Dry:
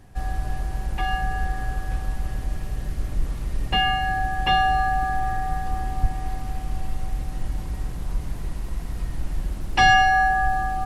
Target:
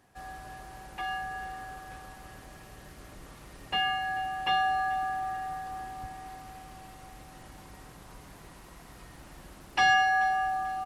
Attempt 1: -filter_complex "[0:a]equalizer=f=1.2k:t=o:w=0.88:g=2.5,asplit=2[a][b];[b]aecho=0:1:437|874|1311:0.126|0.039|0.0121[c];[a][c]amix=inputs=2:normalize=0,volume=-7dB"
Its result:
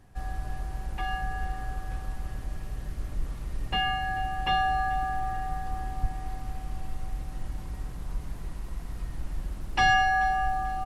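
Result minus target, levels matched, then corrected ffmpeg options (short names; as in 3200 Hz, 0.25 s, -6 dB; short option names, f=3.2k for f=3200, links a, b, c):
500 Hz band +4.0 dB
-filter_complex "[0:a]highpass=f=410:p=1,equalizer=f=1.2k:t=o:w=0.88:g=2.5,asplit=2[a][b];[b]aecho=0:1:437|874|1311:0.126|0.039|0.0121[c];[a][c]amix=inputs=2:normalize=0,volume=-7dB"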